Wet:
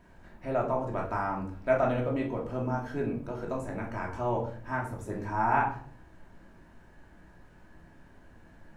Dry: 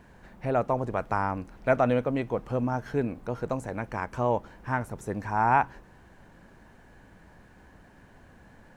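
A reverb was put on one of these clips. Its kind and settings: simulated room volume 510 m³, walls furnished, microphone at 2.8 m; trim -7.5 dB

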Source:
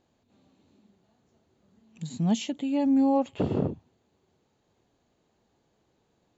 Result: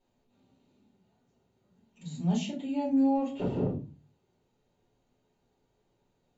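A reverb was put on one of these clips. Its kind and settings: simulated room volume 130 m³, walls furnished, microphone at 4.5 m; trim -14 dB

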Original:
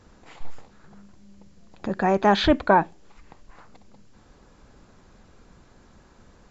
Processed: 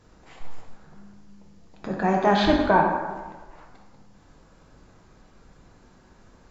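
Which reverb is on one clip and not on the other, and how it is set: plate-style reverb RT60 1.3 s, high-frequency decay 0.6×, DRR -0.5 dB; trim -3.5 dB

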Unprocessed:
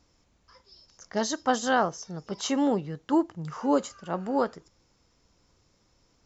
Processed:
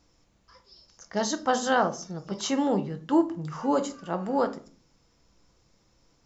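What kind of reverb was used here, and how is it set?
simulated room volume 300 m³, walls furnished, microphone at 0.7 m

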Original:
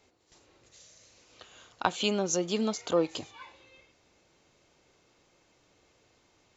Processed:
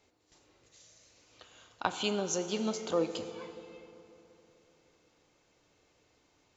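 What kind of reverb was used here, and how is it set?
FDN reverb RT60 3.2 s, high-frequency decay 0.65×, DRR 8.5 dB; trim -4 dB

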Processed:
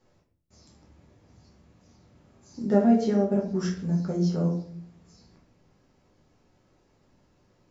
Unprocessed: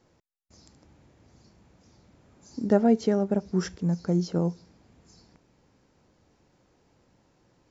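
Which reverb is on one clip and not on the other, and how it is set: simulated room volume 61 m³, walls mixed, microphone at 1 m; trim -5.5 dB

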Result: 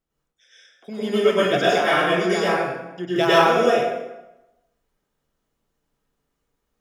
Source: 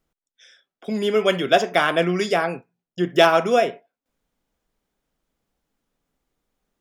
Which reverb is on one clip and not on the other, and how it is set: plate-style reverb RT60 0.96 s, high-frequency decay 0.75×, pre-delay 90 ms, DRR -9.5 dB; trim -8.5 dB

